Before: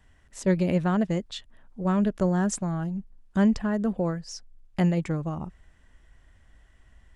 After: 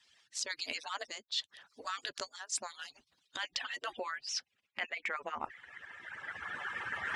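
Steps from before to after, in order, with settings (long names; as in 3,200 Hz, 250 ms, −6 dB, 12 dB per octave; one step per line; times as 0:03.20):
harmonic-percussive split with one part muted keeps percussive
camcorder AGC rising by 15 dB per second
band-pass filter sweep 4,600 Hz → 1,500 Hz, 0:02.61–0:06.36
reversed playback
downward compressor 10 to 1, threshold −51 dBFS, peak gain reduction 18 dB
reversed playback
level +17 dB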